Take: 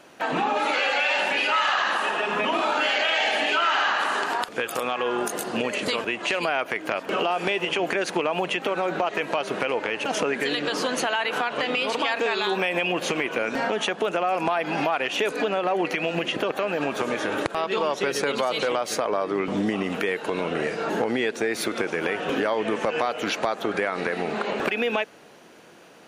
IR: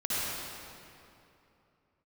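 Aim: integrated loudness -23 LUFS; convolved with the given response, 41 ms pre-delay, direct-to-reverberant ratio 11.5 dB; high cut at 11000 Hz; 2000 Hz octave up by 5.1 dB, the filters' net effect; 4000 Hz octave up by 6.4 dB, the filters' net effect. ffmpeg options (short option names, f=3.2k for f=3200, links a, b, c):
-filter_complex "[0:a]lowpass=11k,equalizer=f=2k:t=o:g=4.5,equalizer=f=4k:t=o:g=7,asplit=2[a][b];[1:a]atrim=start_sample=2205,adelay=41[c];[b][c]afir=irnorm=-1:irlink=0,volume=-20.5dB[d];[a][d]amix=inputs=2:normalize=0,volume=-2dB"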